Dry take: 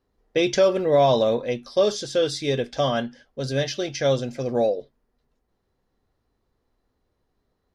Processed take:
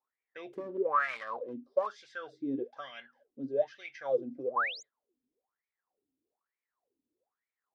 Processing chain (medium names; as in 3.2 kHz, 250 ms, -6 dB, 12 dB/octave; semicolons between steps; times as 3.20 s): 0.53–1.87 s: self-modulated delay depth 0.37 ms; 4.56–4.83 s: painted sound rise 930–7400 Hz -22 dBFS; wah-wah 1.1 Hz 260–2300 Hz, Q 13; trim +3 dB